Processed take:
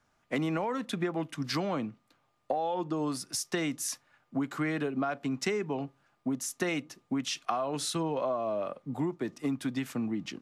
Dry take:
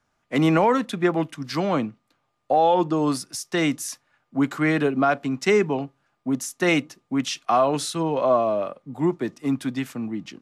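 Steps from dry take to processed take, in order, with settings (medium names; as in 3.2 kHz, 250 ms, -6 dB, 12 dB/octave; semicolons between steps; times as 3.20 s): compression 10:1, threshold -28 dBFS, peak gain reduction 14 dB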